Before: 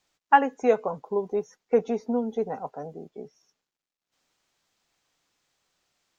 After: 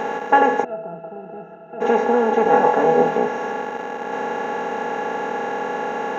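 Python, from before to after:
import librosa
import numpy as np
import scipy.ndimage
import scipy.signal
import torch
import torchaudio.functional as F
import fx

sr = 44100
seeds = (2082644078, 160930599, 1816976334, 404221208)

y = fx.bin_compress(x, sr, power=0.2)
y = fx.octave_resonator(y, sr, note='E', decay_s=0.15, at=(0.63, 1.8), fade=0.02)
y = fx.room_flutter(y, sr, wall_m=4.2, rt60_s=0.32, at=(2.43, 3.18))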